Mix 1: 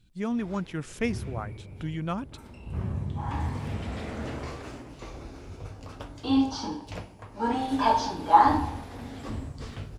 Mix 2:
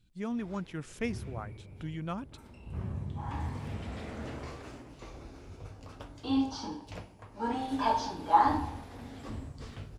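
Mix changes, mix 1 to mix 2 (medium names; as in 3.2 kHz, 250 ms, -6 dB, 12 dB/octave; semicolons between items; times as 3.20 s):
speech -5.5 dB; background -5.5 dB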